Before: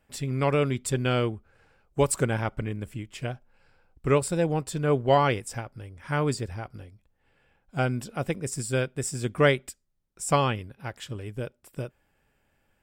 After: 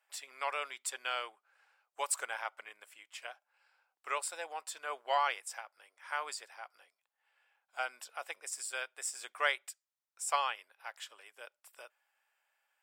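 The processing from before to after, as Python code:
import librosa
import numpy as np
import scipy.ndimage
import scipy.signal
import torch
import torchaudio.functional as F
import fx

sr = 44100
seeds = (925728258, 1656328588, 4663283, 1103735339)

y = scipy.signal.sosfilt(scipy.signal.butter(4, 770.0, 'highpass', fs=sr, output='sos'), x)
y = y * librosa.db_to_amplitude(-5.0)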